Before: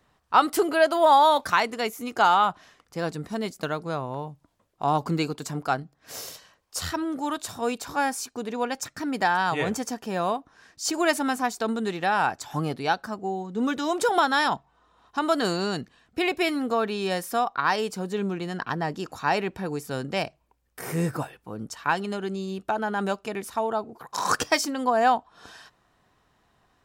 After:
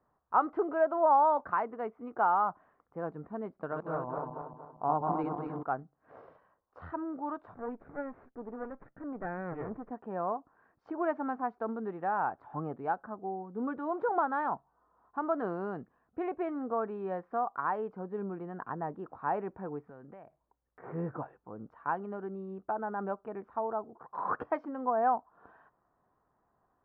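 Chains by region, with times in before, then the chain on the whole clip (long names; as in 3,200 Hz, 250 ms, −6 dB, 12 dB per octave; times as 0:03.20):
0:03.60–0:05.63: feedback delay that plays each chunk backwards 117 ms, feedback 64%, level −2.5 dB + parametric band 3,700 Hz +3.5 dB 0.71 octaves
0:07.54–0:09.91: lower of the sound and its delayed copy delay 0.51 ms + head-to-tape spacing loss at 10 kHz 27 dB
0:19.80–0:20.84: downward compressor, threshold −38 dBFS + parametric band 2,000 Hz +5 dB 0.54 octaves
whole clip: low-pass filter 1,300 Hz 24 dB per octave; low-shelf EQ 230 Hz −7.5 dB; level −6 dB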